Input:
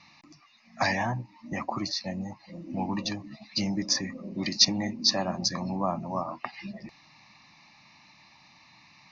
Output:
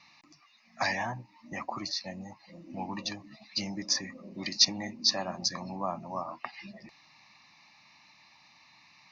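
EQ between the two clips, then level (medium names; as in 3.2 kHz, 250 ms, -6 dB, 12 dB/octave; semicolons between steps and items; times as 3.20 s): bass shelf 460 Hz -7.5 dB; -2.0 dB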